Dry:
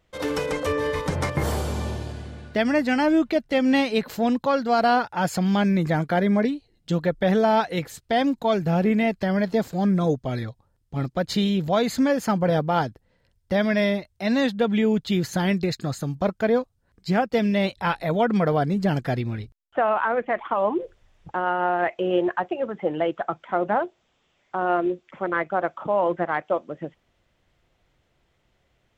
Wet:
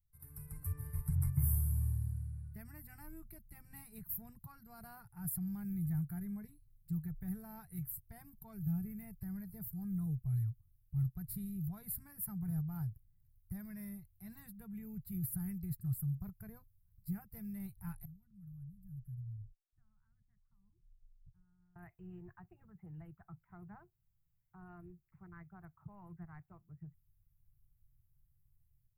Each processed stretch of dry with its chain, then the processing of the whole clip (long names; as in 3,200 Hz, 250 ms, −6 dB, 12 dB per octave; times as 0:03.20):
0:18.05–0:21.76: guitar amp tone stack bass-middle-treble 10-0-1 + phaser with its sweep stopped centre 1,300 Hz, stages 4
whole clip: inverse Chebyshev band-stop filter 240–6,900 Hz, stop band 40 dB; automatic gain control gain up to 10 dB; parametric band 63 Hz −12 dB 2.5 octaves; level −2.5 dB